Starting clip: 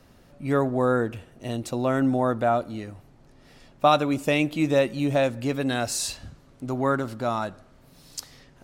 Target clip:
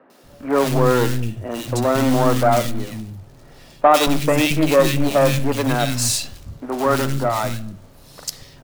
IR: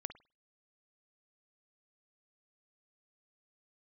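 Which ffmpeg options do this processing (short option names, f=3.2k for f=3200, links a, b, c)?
-filter_complex "[0:a]aeval=exprs='0.531*(cos(1*acos(clip(val(0)/0.531,-1,1)))-cos(1*PI/2))+0.0531*(cos(5*acos(clip(val(0)/0.531,-1,1)))-cos(5*PI/2))+0.0596*(cos(8*acos(clip(val(0)/0.531,-1,1)))-cos(8*PI/2))':c=same,acrusher=bits=3:mode=log:mix=0:aa=0.000001,acrossover=split=240|1900[a][b][c];[c]adelay=100[d];[a]adelay=230[e];[e][b][d]amix=inputs=3:normalize=0,asplit=2[f][g];[1:a]atrim=start_sample=2205[h];[g][h]afir=irnorm=-1:irlink=0,volume=2dB[i];[f][i]amix=inputs=2:normalize=0,volume=-1dB"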